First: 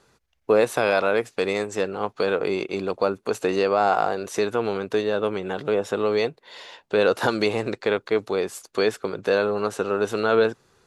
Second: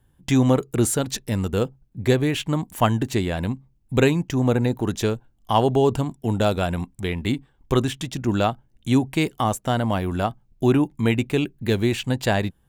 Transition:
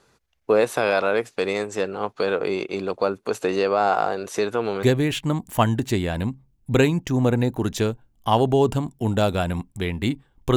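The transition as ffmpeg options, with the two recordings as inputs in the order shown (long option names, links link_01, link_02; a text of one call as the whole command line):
ffmpeg -i cue0.wav -i cue1.wav -filter_complex "[0:a]apad=whole_dur=10.56,atrim=end=10.56,atrim=end=4.832[link_01];[1:a]atrim=start=2.058:end=7.79[link_02];[link_01][link_02]acrossfade=duration=0.004:curve1=hsin:curve2=hsin" out.wav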